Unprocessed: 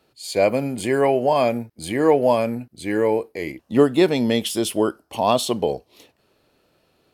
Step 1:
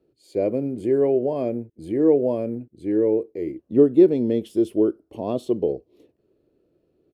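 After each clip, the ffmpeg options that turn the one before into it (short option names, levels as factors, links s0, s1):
-af "firequalizer=gain_entry='entry(230,0);entry(340,8);entry(820,-14);entry(5100,-19)':delay=0.05:min_phase=1,volume=0.668"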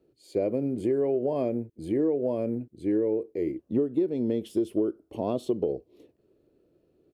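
-af "acompressor=threshold=0.0794:ratio=10"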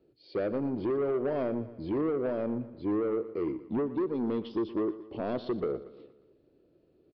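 -af "aresample=11025,asoftclip=type=tanh:threshold=0.0562,aresample=44100,aecho=1:1:118|236|354|472|590:0.168|0.0856|0.0437|0.0223|0.0114"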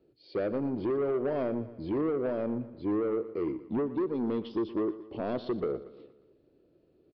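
-af anull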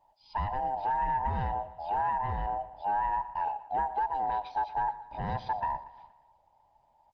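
-af "afftfilt=real='real(if(lt(b,1008),b+24*(1-2*mod(floor(b/24),2)),b),0)':imag='imag(if(lt(b,1008),b+24*(1-2*mod(floor(b/24),2)),b),0)':win_size=2048:overlap=0.75" -ar 48000 -c:a libopus -b:a 20k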